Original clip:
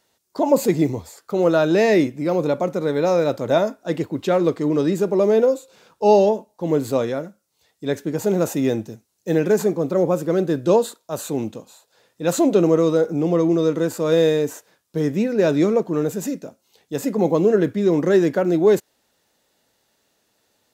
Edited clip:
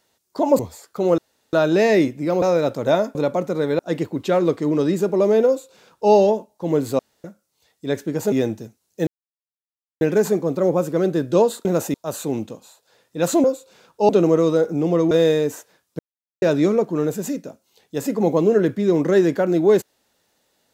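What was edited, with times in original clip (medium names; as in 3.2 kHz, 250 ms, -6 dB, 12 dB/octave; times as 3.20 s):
0.59–0.93 s: delete
1.52 s: insert room tone 0.35 s
2.41–3.05 s: move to 3.78 s
5.46–6.11 s: copy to 12.49 s
6.98–7.23 s: room tone
8.31–8.60 s: move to 10.99 s
9.35 s: insert silence 0.94 s
13.51–14.09 s: delete
14.97–15.40 s: mute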